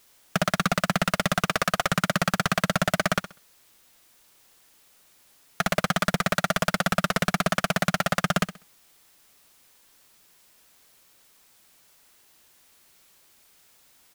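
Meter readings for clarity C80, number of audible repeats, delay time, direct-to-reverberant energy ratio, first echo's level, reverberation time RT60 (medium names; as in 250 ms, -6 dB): no reverb, 2, 65 ms, no reverb, -13.5 dB, no reverb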